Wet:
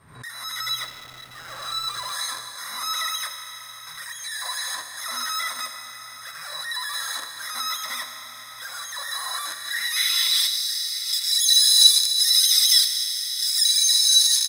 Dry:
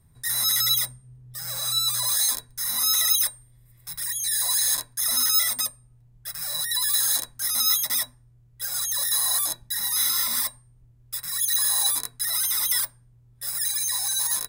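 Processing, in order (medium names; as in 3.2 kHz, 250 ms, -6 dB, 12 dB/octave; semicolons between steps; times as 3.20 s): fade-in on the opening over 0.80 s; peaking EQ 890 Hz -11.5 dB 1.2 oct; Schroeder reverb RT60 3.3 s, combs from 29 ms, DRR 5.5 dB; in parallel at +3 dB: upward compressor, threshold -25 dBFS; on the sum: band-pass sweep 1.1 kHz -> 4.5 kHz, 9.27–10.66 s; 0.79–2.13 s: hysteresis with a dead band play -40.5 dBFS; delay 956 ms -18 dB; swell ahead of each attack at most 88 dB/s; trim +8 dB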